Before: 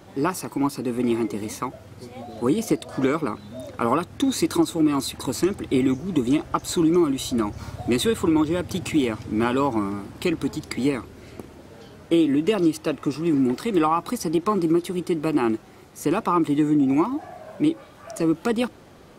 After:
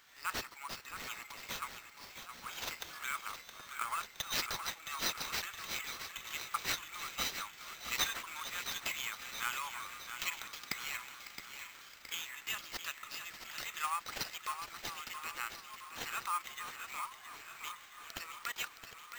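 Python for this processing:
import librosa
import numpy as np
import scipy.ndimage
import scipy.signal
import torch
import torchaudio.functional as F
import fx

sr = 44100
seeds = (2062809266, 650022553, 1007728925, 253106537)

y = fx.reverse_delay_fb(x, sr, ms=687, feedback_pct=60, wet_db=-12.5)
y = scipy.signal.sosfilt(scipy.signal.butter(4, 1400.0, 'highpass', fs=sr, output='sos'), y)
y = fx.echo_feedback(y, sr, ms=668, feedback_pct=53, wet_db=-9)
y = fx.sample_hold(y, sr, seeds[0], rate_hz=9900.0, jitter_pct=0)
y = y * 10.0 ** (-5.0 / 20.0)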